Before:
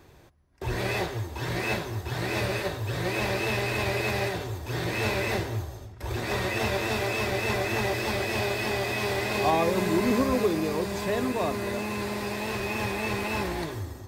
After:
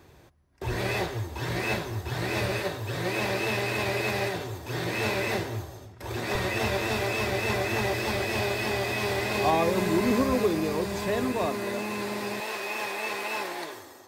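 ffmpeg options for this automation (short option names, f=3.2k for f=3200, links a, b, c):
-af "asetnsamples=n=441:p=0,asendcmd='2.64 highpass f 110;6.35 highpass f 40;11.46 highpass f 160;12.4 highpass f 470',highpass=42"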